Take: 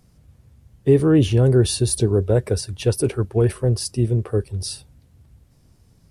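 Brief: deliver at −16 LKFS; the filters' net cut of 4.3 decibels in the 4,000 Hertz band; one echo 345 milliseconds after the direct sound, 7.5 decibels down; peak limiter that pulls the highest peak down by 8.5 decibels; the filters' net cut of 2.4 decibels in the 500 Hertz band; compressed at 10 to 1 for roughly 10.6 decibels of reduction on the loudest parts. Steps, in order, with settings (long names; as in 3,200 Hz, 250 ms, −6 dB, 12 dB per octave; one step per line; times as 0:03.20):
parametric band 500 Hz −3 dB
parametric band 4,000 Hz −5.5 dB
downward compressor 10 to 1, threshold −23 dBFS
brickwall limiter −22.5 dBFS
single-tap delay 345 ms −7.5 dB
level +16 dB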